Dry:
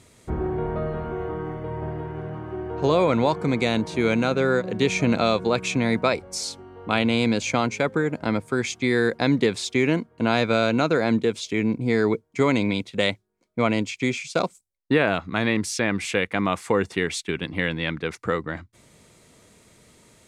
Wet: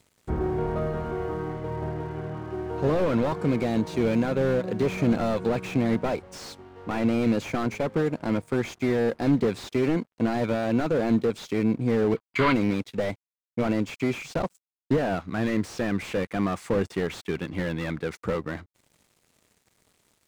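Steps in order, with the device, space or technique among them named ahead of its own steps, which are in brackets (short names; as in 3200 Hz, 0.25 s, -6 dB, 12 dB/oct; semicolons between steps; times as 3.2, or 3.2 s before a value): early transistor amplifier (crossover distortion -51.5 dBFS; slew limiter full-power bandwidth 45 Hz); spectral gain 12.16–12.53, 950–4900 Hz +12 dB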